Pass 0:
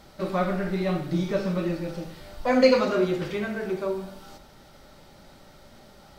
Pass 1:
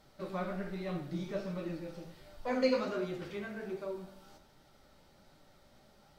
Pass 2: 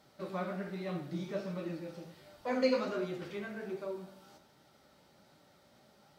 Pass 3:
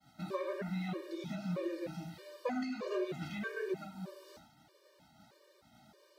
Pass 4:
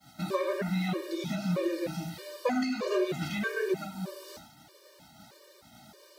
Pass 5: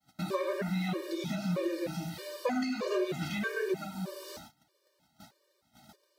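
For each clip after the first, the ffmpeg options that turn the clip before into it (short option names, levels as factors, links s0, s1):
-af "flanger=delay=6.5:depth=9.4:regen=55:speed=1.3:shape=sinusoidal,volume=0.422"
-af "highpass=110"
-af "agate=range=0.0224:threshold=0.00112:ratio=3:detection=peak,acompressor=threshold=0.0141:ratio=8,afftfilt=real='re*gt(sin(2*PI*1.6*pts/sr)*(1-2*mod(floor(b*sr/1024/310),2)),0)':imag='im*gt(sin(2*PI*1.6*pts/sr)*(1-2*mod(floor(b*sr/1024/310),2)),0)':win_size=1024:overlap=0.75,volume=2.24"
-af "highshelf=f=4600:g=8,volume=2.37"
-filter_complex "[0:a]agate=range=0.126:threshold=0.00251:ratio=16:detection=peak,asplit=2[s0][s1];[s1]acompressor=threshold=0.0126:ratio=6,volume=1[s2];[s0][s2]amix=inputs=2:normalize=0,volume=0.596"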